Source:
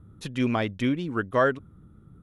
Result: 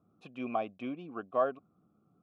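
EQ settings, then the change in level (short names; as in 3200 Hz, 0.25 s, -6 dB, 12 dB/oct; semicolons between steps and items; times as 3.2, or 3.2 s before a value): vowel filter a; bell 210 Hz +11 dB 1.9 oct; 0.0 dB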